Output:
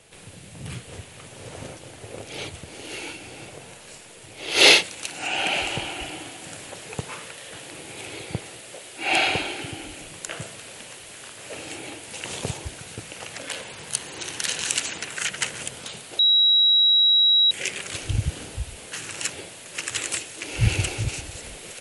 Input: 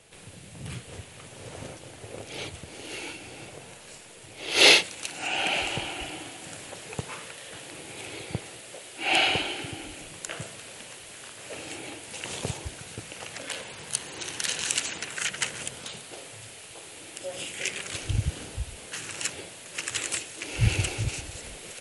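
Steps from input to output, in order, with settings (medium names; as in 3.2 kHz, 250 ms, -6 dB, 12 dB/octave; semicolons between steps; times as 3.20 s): 8.96–9.61 s: band-stop 3 kHz, Q 12; 16.19–17.51 s: bleep 3.87 kHz -16.5 dBFS; trim +2.5 dB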